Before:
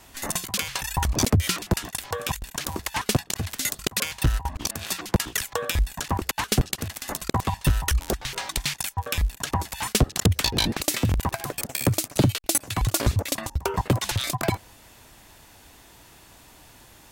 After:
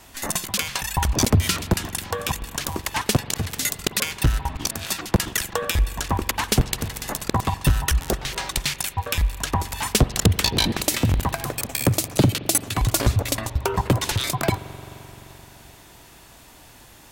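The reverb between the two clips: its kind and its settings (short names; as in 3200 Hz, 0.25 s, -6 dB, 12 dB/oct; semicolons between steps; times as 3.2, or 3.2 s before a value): spring tank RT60 4 s, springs 43 ms, chirp 45 ms, DRR 13.5 dB; gain +2.5 dB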